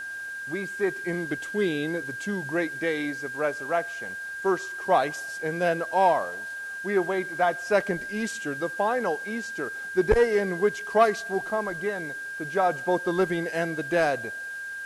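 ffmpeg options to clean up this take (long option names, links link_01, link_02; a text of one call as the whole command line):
ffmpeg -i in.wav -af "bandreject=frequency=1600:width=30,afwtdn=0.0028" out.wav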